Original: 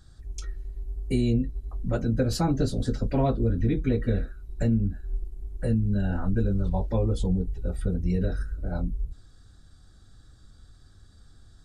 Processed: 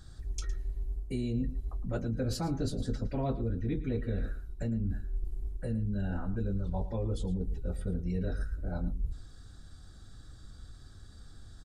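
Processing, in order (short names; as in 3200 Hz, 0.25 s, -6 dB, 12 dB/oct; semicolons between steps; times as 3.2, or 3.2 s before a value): reverse; compressor, threshold -32 dBFS, peak gain reduction 12.5 dB; reverse; outdoor echo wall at 19 m, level -14 dB; gain +2.5 dB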